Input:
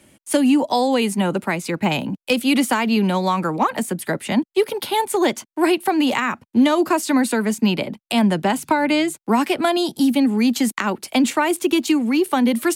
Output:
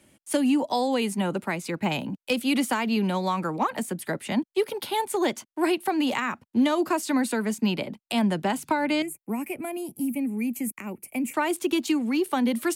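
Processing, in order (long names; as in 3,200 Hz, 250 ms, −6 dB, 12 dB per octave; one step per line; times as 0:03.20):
0:09.02–0:11.34: drawn EQ curve 100 Hz 0 dB, 600 Hz −8 dB, 1,600 Hz −17 dB, 2,400 Hz −1 dB, 3,600 Hz −28 dB, 11,000 Hz +5 dB
level −6.5 dB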